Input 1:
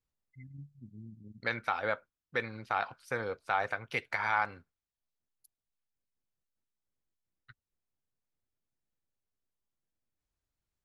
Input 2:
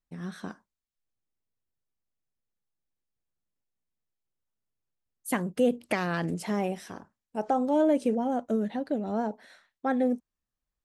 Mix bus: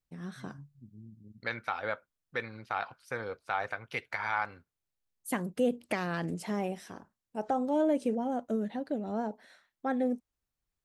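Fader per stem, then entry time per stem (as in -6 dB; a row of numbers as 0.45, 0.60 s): -2.0, -4.0 dB; 0.00, 0.00 s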